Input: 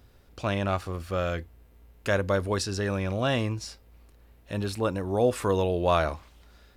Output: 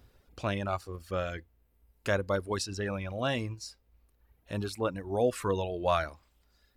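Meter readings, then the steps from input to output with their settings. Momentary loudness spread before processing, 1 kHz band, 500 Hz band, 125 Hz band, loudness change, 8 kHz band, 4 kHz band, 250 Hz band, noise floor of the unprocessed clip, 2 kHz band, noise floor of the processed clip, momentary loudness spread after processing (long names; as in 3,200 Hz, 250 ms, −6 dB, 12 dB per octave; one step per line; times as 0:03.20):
11 LU, −4.0 dB, −4.5 dB, −6.5 dB, −4.5 dB, −3.5 dB, −4.0 dB, −5.5 dB, −57 dBFS, −4.0 dB, −70 dBFS, 10 LU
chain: reverb reduction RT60 1.4 s
level −3 dB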